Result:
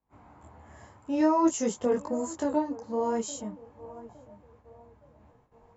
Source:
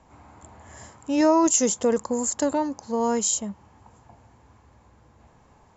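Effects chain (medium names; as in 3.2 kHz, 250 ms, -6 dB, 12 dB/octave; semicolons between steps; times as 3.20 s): low-pass 1.9 kHz 6 dB/octave; band-passed feedback delay 863 ms, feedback 44%, band-pass 570 Hz, level -17 dB; gate -54 dBFS, range -24 dB; detune thickener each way 18 cents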